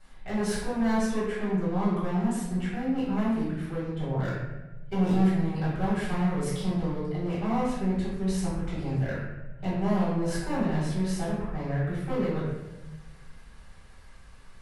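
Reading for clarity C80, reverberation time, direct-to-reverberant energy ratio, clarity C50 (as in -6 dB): 2.5 dB, 1.1 s, -13.0 dB, -0.5 dB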